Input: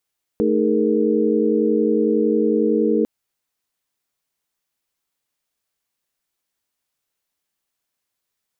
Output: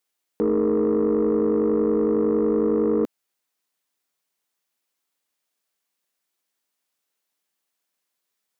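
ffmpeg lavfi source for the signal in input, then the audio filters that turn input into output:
-f lavfi -i "aevalsrc='0.0944*(sin(2*PI*220*t)+sin(2*PI*311.13*t)+sin(2*PI*415.3*t)+sin(2*PI*466.16*t))':duration=2.65:sample_rate=44100"
-af "highpass=190,asoftclip=type=tanh:threshold=-14.5dB"

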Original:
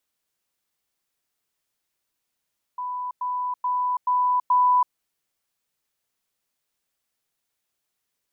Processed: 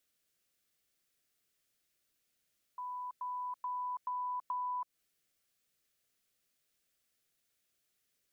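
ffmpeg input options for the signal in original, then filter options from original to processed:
-f lavfi -i "aevalsrc='pow(10,(-27+3*floor(t/0.43))/20)*sin(2*PI*994*t)*clip(min(mod(t,0.43),0.33-mod(t,0.43))/0.005,0,1)':duration=2.15:sample_rate=44100"
-af "equalizer=frequency=930:width=3.6:gain=-14.5,acompressor=threshold=-36dB:ratio=6"

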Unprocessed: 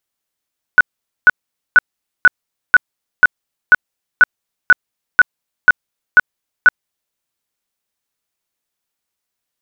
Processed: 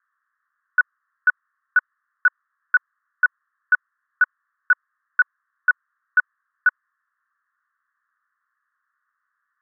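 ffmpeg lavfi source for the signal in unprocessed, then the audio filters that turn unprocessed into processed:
-f lavfi -i "aevalsrc='0.794*sin(2*PI*1480*mod(t,0.49))*lt(mod(t,0.49),40/1480)':duration=6.37:sample_rate=44100"
-af "aeval=exprs='0.794*sin(PI/2*5.01*val(0)/0.794)':channel_layout=same,asuperpass=centerf=1400:order=12:qfactor=1.9"

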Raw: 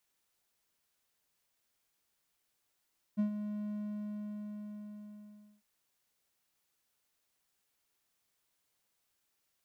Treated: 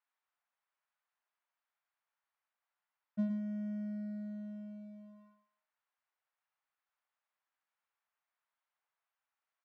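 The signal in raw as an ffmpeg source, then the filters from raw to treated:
-f lavfi -i "aevalsrc='0.0631*(1-4*abs(mod(209*t+0.25,1)-0.5))':duration=2.45:sample_rate=44100,afade=type=in:duration=0.026,afade=type=out:start_time=0.026:duration=0.104:silence=0.335,afade=type=out:start_time=0.52:duration=1.93"
-filter_complex "[0:a]lowpass=1500,acrossover=split=700[link_01][link_02];[link_01]aeval=exprs='sgn(val(0))*max(abs(val(0))-0.00237,0)':channel_layout=same[link_03];[link_03][link_02]amix=inputs=2:normalize=0,aecho=1:1:111:0.422"

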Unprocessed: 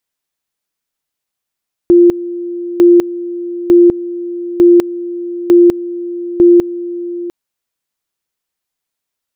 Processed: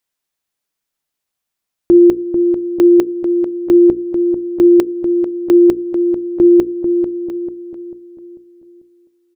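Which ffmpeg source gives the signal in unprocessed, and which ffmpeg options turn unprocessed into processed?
-f lavfi -i "aevalsrc='pow(10,(-2.5-16*gte(mod(t,0.9),0.2))/20)*sin(2*PI*348*t)':duration=5.4:sample_rate=44100"
-filter_complex "[0:a]bandreject=frequency=60:width_type=h:width=6,bandreject=frequency=120:width_type=h:width=6,bandreject=frequency=180:width_type=h:width=6,bandreject=frequency=240:width_type=h:width=6,bandreject=frequency=300:width_type=h:width=6,bandreject=frequency=360:width_type=h:width=6,bandreject=frequency=420:width_type=h:width=6,bandreject=frequency=480:width_type=h:width=6,asplit=2[link_01][link_02];[link_02]adelay=443,lowpass=frequency=810:poles=1,volume=-7dB,asplit=2[link_03][link_04];[link_04]adelay=443,lowpass=frequency=810:poles=1,volume=0.46,asplit=2[link_05][link_06];[link_06]adelay=443,lowpass=frequency=810:poles=1,volume=0.46,asplit=2[link_07][link_08];[link_08]adelay=443,lowpass=frequency=810:poles=1,volume=0.46,asplit=2[link_09][link_10];[link_10]adelay=443,lowpass=frequency=810:poles=1,volume=0.46[link_11];[link_03][link_05][link_07][link_09][link_11]amix=inputs=5:normalize=0[link_12];[link_01][link_12]amix=inputs=2:normalize=0"

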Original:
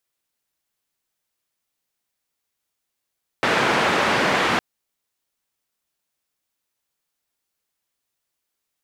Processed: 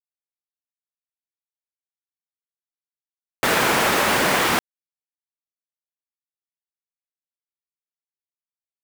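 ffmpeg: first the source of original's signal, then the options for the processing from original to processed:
-f lavfi -i "anoisesrc=color=white:duration=1.16:sample_rate=44100:seed=1,highpass=frequency=150,lowpass=frequency=1800,volume=-3.9dB"
-af "acrusher=bits=3:mix=0:aa=0.000001"

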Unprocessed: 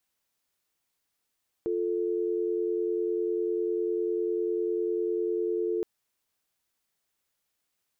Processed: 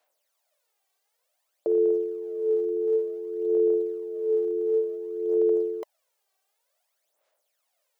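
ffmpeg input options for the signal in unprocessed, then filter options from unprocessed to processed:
-f lavfi -i "aevalsrc='0.0376*(sin(2*PI*350*t)+sin(2*PI*440*t))':duration=4.17:sample_rate=44100"
-af "aphaser=in_gain=1:out_gain=1:delay=2.6:decay=0.66:speed=0.55:type=sinusoidal,highpass=frequency=600:width_type=q:width=4.9"

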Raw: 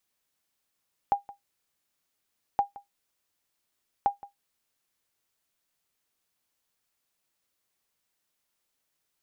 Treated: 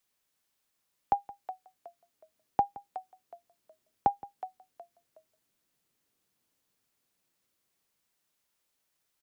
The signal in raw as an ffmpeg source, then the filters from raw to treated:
-f lavfi -i "aevalsrc='0.188*(sin(2*PI*806*mod(t,1.47))*exp(-6.91*mod(t,1.47)/0.14)+0.1*sin(2*PI*806*max(mod(t,1.47)-0.17,0))*exp(-6.91*max(mod(t,1.47)-0.17,0)/0.14))':duration=4.41:sample_rate=44100"
-filter_complex "[0:a]acrossover=split=100|430[link_01][link_02][link_03];[link_02]dynaudnorm=framelen=370:gausssize=11:maxgain=9dB[link_04];[link_03]asplit=4[link_05][link_06][link_07][link_08];[link_06]adelay=368,afreqshift=-58,volume=-12dB[link_09];[link_07]adelay=736,afreqshift=-116,volume=-22.2dB[link_10];[link_08]adelay=1104,afreqshift=-174,volume=-32.3dB[link_11];[link_05][link_09][link_10][link_11]amix=inputs=4:normalize=0[link_12];[link_01][link_04][link_12]amix=inputs=3:normalize=0"

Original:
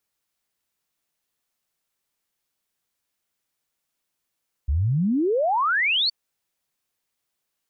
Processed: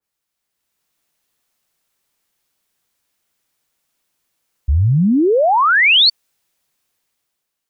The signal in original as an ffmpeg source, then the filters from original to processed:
-f lavfi -i "aevalsrc='0.119*clip(min(t,1.42-t)/0.01,0,1)*sin(2*PI*64*1.42/log(4600/64)*(exp(log(4600/64)*t/1.42)-1))':duration=1.42:sample_rate=44100"
-af "dynaudnorm=framelen=120:gausssize=11:maxgain=8.5dB,adynamicequalizer=threshold=0.0631:dfrequency=2100:dqfactor=0.7:tfrequency=2100:tqfactor=0.7:attack=5:release=100:ratio=0.375:range=1.5:mode=boostabove:tftype=highshelf"

